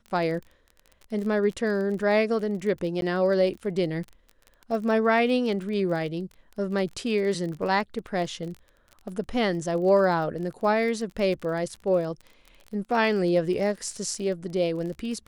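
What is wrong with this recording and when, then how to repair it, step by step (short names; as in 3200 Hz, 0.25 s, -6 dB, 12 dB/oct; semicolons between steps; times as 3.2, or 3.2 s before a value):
crackle 31/s -34 dBFS
3.01–3.02 gap 12 ms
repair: de-click; interpolate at 3.01, 12 ms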